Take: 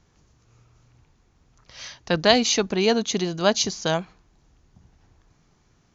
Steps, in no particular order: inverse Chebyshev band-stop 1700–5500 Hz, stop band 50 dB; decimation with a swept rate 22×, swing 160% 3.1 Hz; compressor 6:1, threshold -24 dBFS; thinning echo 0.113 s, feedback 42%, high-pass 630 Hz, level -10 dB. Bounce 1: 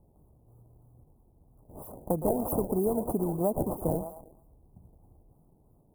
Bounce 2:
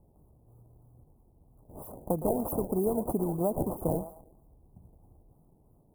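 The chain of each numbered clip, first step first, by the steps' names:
thinning echo > decimation with a swept rate > inverse Chebyshev band-stop > compressor; compressor > thinning echo > decimation with a swept rate > inverse Chebyshev band-stop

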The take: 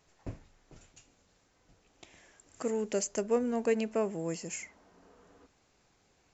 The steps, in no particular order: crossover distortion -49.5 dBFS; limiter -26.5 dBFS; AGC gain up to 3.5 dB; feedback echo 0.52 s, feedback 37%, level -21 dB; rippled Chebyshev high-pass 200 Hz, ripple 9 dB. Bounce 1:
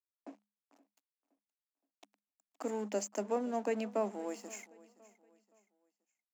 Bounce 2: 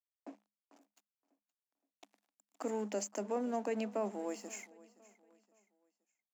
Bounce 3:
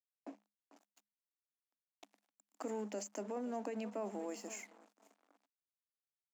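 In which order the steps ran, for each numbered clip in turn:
crossover distortion > rippled Chebyshev high-pass > limiter > AGC > feedback echo; AGC > crossover distortion > rippled Chebyshev high-pass > limiter > feedback echo; AGC > feedback echo > crossover distortion > limiter > rippled Chebyshev high-pass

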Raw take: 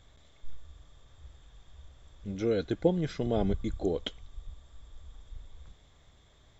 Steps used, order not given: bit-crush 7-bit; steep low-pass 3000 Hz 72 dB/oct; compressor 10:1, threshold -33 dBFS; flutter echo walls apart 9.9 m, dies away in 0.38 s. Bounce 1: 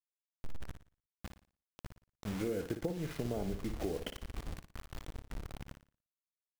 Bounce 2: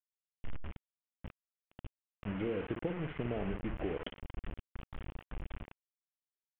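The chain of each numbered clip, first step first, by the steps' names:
steep low-pass > bit-crush > compressor > flutter echo; compressor > flutter echo > bit-crush > steep low-pass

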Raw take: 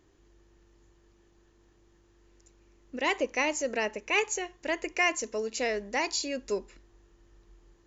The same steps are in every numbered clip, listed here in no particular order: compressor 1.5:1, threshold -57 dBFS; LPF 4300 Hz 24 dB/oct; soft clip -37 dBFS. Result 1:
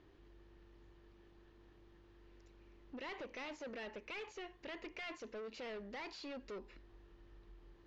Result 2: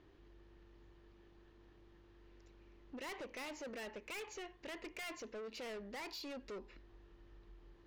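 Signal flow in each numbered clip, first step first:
soft clip > compressor > LPF; LPF > soft clip > compressor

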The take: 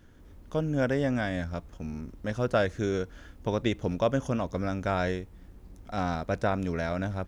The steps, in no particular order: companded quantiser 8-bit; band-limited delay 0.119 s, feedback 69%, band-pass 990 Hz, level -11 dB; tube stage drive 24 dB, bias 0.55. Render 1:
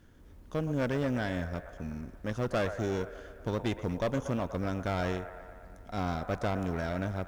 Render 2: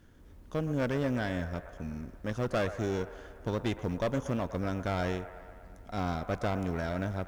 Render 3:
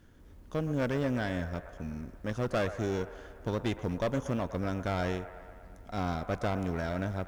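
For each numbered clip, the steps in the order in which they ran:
band-limited delay > tube stage > companded quantiser; tube stage > band-limited delay > companded quantiser; tube stage > companded quantiser > band-limited delay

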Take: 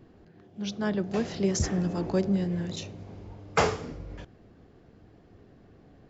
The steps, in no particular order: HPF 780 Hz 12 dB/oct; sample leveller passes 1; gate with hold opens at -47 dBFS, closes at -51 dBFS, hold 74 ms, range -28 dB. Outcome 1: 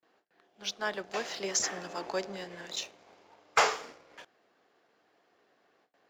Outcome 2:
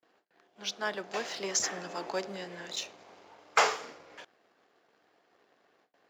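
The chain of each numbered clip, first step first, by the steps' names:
gate with hold > HPF > sample leveller; gate with hold > sample leveller > HPF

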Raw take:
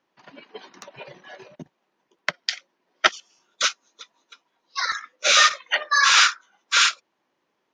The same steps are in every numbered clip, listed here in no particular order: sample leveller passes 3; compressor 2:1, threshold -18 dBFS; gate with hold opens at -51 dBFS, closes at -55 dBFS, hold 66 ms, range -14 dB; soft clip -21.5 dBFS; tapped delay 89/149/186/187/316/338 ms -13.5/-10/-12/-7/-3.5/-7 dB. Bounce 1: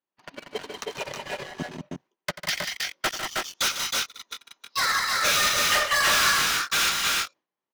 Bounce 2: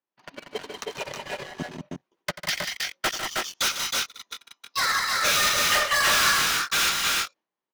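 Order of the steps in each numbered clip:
compressor > sample leveller > soft clip > tapped delay > gate with hold; gate with hold > sample leveller > soft clip > compressor > tapped delay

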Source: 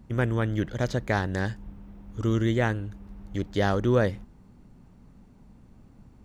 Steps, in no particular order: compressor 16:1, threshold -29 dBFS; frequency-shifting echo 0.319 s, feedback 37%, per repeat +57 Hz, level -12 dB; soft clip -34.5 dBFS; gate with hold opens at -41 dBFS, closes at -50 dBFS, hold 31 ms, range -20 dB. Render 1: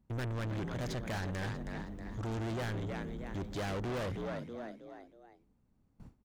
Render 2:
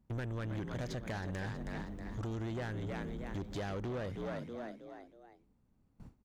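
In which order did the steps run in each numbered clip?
gate with hold > frequency-shifting echo > soft clip > compressor; gate with hold > frequency-shifting echo > compressor > soft clip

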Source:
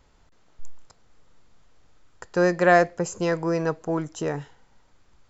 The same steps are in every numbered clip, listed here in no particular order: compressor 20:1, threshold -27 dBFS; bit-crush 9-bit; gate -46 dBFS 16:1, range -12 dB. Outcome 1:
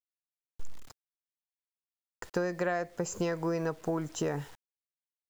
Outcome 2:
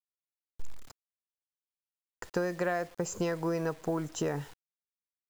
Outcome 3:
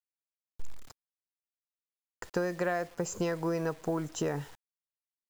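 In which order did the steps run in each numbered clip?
gate > bit-crush > compressor; compressor > gate > bit-crush; gate > compressor > bit-crush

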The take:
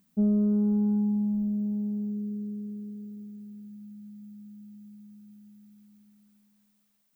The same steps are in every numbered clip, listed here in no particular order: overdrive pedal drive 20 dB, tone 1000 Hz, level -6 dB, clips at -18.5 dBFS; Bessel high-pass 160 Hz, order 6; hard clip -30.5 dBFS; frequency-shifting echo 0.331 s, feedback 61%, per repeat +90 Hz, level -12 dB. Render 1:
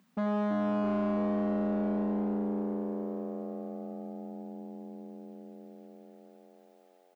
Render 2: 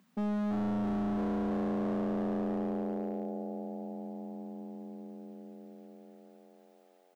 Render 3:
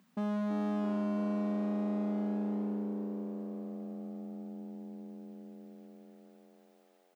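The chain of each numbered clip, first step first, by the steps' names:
hard clip > frequency-shifting echo > Bessel high-pass > overdrive pedal; Bessel high-pass > frequency-shifting echo > overdrive pedal > hard clip; overdrive pedal > hard clip > frequency-shifting echo > Bessel high-pass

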